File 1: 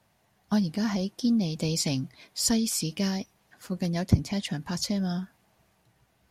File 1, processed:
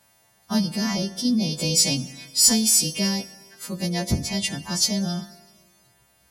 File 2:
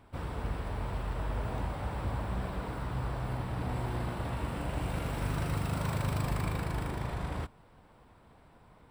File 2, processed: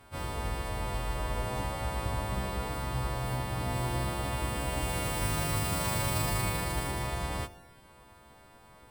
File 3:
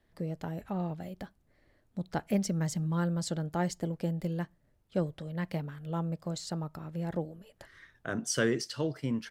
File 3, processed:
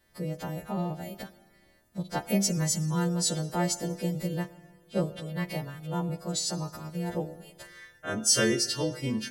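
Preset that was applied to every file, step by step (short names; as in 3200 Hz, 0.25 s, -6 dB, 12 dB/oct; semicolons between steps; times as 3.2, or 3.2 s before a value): frequency quantiser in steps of 2 st; dynamic EQ 1500 Hz, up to -6 dB, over -57 dBFS, Q 6.3; in parallel at -8 dB: hard clip -16.5 dBFS; on the sum: Schroeder reverb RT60 1.6 s, combs from 33 ms, DRR 14 dB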